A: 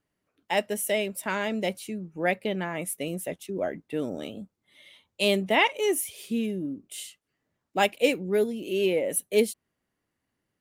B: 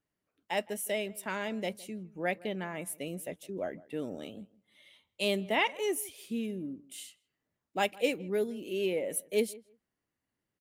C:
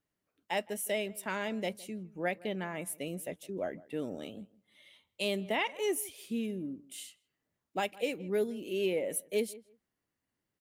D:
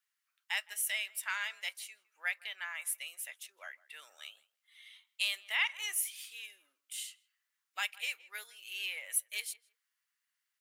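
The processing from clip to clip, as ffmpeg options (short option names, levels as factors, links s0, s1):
-filter_complex "[0:a]asplit=2[s0][s1];[s1]adelay=161,lowpass=f=1900:p=1,volume=0.0891,asplit=2[s2][s3];[s3]adelay=161,lowpass=f=1900:p=1,volume=0.16[s4];[s0][s2][s4]amix=inputs=3:normalize=0,volume=0.473"
-af "alimiter=limit=0.0944:level=0:latency=1:release=222"
-af "highpass=f=1300:w=0.5412,highpass=f=1300:w=1.3066,volume=1.58"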